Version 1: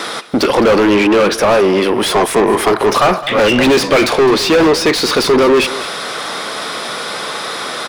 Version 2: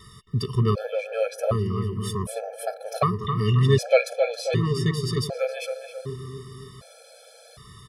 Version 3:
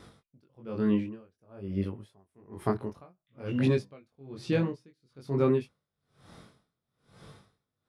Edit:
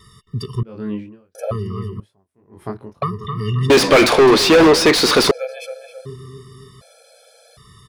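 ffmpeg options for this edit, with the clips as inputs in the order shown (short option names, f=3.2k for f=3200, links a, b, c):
-filter_complex "[2:a]asplit=2[a][b];[1:a]asplit=4[c][d][e][f];[c]atrim=end=0.632[g];[a]atrim=start=0.628:end=1.352[h];[d]atrim=start=1.348:end=2.002[i];[b]atrim=start=1.998:end=3.022[j];[e]atrim=start=3.018:end=3.702[k];[0:a]atrim=start=3.698:end=5.312[l];[f]atrim=start=5.308[m];[g][h]acrossfade=d=0.004:c1=hsin:c2=hsin[n];[n][i]acrossfade=d=0.004:c1=hsin:c2=hsin[o];[o][j]acrossfade=d=0.004:c1=hsin:c2=hsin[p];[p][k]acrossfade=d=0.004:c1=hsin:c2=hsin[q];[q][l]acrossfade=d=0.004:c1=hsin:c2=hsin[r];[r][m]acrossfade=d=0.004:c1=hsin:c2=hsin"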